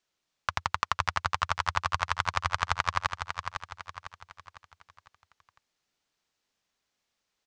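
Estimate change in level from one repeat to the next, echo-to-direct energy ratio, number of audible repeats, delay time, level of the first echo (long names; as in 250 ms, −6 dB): −7.5 dB, −6.0 dB, 4, 503 ms, −7.0 dB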